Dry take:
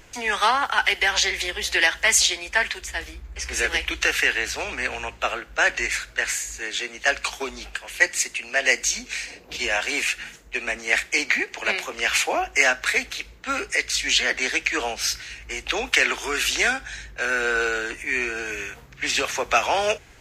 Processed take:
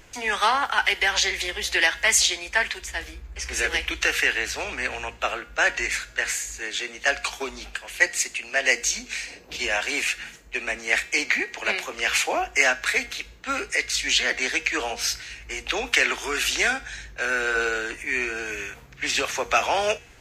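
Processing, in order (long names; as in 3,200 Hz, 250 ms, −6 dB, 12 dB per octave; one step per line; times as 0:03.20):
hum removal 237.2 Hz, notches 34
level −1 dB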